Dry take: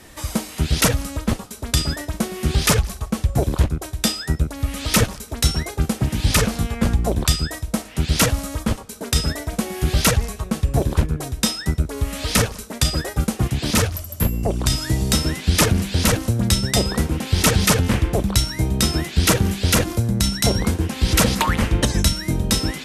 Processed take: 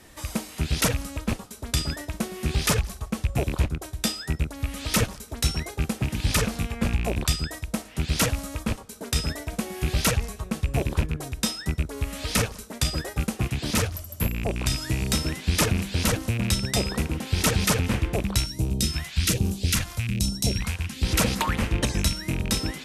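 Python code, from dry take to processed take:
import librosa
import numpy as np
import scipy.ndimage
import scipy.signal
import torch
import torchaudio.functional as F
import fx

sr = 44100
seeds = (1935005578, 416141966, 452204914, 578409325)

y = fx.rattle_buzz(x, sr, strikes_db=-18.0, level_db=-16.0)
y = fx.phaser_stages(y, sr, stages=2, low_hz=300.0, high_hz=2000.0, hz=1.2, feedback_pct=25, at=(18.46, 21.03))
y = y * librosa.db_to_amplitude(-6.0)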